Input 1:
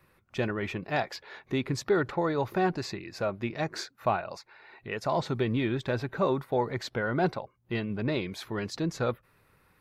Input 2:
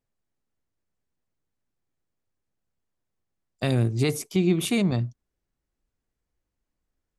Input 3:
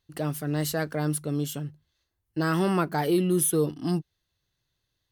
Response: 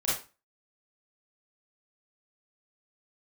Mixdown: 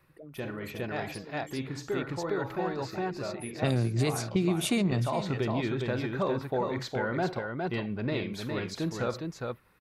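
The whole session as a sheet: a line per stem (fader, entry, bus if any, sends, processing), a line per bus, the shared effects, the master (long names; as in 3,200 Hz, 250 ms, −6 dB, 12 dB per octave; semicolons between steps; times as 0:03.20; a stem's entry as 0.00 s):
−2.5 dB, 0.00 s, send −19.5 dB, echo send −4 dB, automatic ducking −7 dB, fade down 0.25 s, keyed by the third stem
+1.5 dB, 0.00 s, no send, echo send −16.5 dB, low-pass that shuts in the quiet parts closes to 340 Hz, open at −20.5 dBFS
−17.5 dB, 0.00 s, no send, echo send −4.5 dB, spectral envelope exaggerated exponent 3; downward compressor, threshold −25 dBFS, peak gain reduction 6 dB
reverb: on, RT60 0.30 s, pre-delay 27 ms
echo: single-tap delay 410 ms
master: downward compressor 4 to 1, threshold −24 dBFS, peak gain reduction 8.5 dB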